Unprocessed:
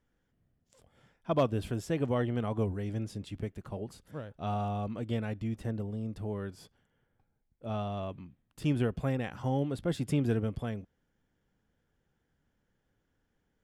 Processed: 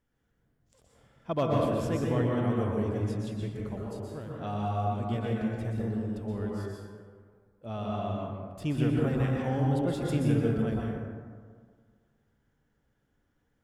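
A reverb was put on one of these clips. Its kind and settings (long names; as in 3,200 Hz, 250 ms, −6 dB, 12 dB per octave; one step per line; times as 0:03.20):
dense smooth reverb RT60 1.8 s, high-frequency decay 0.4×, pre-delay 110 ms, DRR −3 dB
level −2 dB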